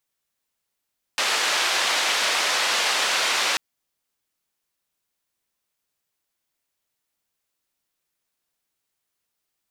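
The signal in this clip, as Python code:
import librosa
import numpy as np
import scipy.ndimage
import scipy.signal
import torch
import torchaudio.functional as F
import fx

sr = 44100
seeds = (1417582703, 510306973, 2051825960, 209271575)

y = fx.band_noise(sr, seeds[0], length_s=2.39, low_hz=570.0, high_hz=4400.0, level_db=-22.5)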